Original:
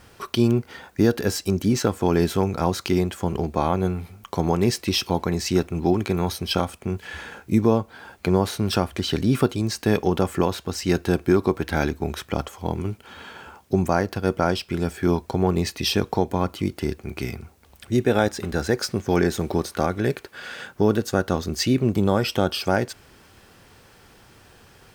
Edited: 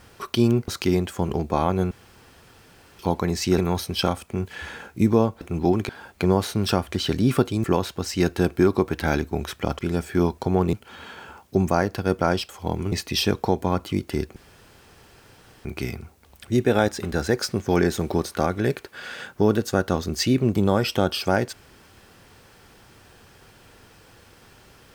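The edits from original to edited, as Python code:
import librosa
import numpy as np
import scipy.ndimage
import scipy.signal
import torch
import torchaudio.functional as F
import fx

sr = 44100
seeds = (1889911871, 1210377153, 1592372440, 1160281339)

y = fx.edit(x, sr, fx.cut(start_s=0.68, length_s=2.04),
    fx.room_tone_fill(start_s=3.95, length_s=1.08),
    fx.move(start_s=5.62, length_s=0.48, to_s=7.93),
    fx.cut(start_s=9.68, length_s=0.65),
    fx.swap(start_s=12.48, length_s=0.43, other_s=14.67, other_length_s=0.94),
    fx.insert_room_tone(at_s=17.05, length_s=1.29), tone=tone)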